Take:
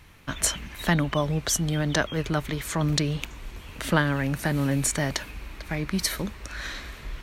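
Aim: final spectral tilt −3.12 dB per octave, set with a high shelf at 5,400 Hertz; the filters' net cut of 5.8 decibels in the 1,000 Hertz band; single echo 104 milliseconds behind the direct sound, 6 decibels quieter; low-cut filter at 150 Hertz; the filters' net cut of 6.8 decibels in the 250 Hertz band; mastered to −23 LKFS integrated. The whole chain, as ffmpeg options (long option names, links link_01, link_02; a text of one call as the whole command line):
ffmpeg -i in.wav -af "highpass=150,equalizer=frequency=250:width_type=o:gain=-8.5,equalizer=frequency=1000:width_type=o:gain=-7.5,highshelf=frequency=5400:gain=5,aecho=1:1:104:0.501,volume=4dB" out.wav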